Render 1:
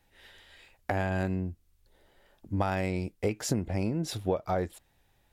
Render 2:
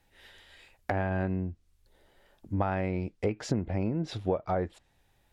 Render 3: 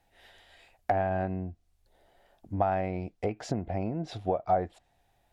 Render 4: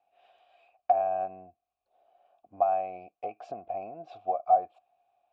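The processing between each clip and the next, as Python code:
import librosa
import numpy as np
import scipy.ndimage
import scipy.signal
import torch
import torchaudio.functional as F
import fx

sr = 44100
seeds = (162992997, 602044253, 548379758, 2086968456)

y1 = fx.env_lowpass_down(x, sr, base_hz=2100.0, full_db=-26.0)
y2 = fx.peak_eq(y1, sr, hz=710.0, db=12.0, octaves=0.38)
y2 = y2 * librosa.db_to_amplitude(-3.0)
y3 = fx.vowel_filter(y2, sr, vowel='a')
y3 = y3 * librosa.db_to_amplitude(5.5)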